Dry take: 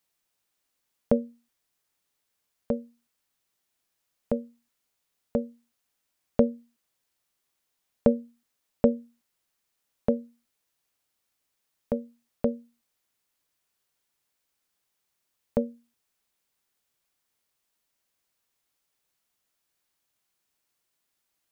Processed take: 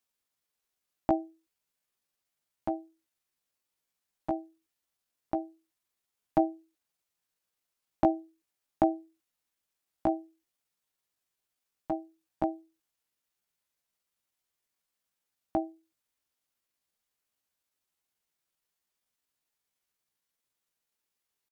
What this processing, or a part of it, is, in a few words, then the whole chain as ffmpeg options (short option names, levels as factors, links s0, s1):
chipmunk voice: -af "asetrate=60591,aresample=44100,atempo=0.727827,volume=0.596"